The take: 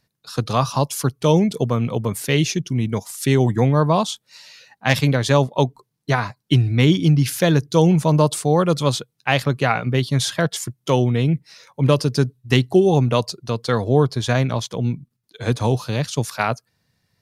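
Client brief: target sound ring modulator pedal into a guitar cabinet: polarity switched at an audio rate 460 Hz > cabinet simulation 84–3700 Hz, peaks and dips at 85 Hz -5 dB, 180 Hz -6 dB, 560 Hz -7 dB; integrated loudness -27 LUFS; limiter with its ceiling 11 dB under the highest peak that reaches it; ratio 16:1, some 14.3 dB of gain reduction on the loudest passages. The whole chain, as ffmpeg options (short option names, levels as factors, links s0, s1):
-af "acompressor=threshold=0.0631:ratio=16,alimiter=limit=0.112:level=0:latency=1,aeval=exprs='val(0)*sgn(sin(2*PI*460*n/s))':c=same,highpass=84,equalizer=f=85:t=q:w=4:g=-5,equalizer=f=180:t=q:w=4:g=-6,equalizer=f=560:t=q:w=4:g=-7,lowpass=f=3700:w=0.5412,lowpass=f=3700:w=1.3066,volume=2"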